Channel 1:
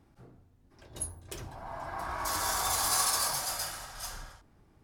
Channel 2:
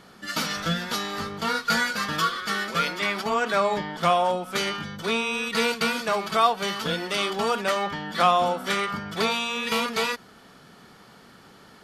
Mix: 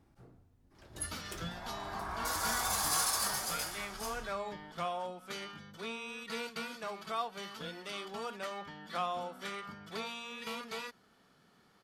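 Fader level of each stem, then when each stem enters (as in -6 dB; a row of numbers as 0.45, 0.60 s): -3.5, -16.0 dB; 0.00, 0.75 s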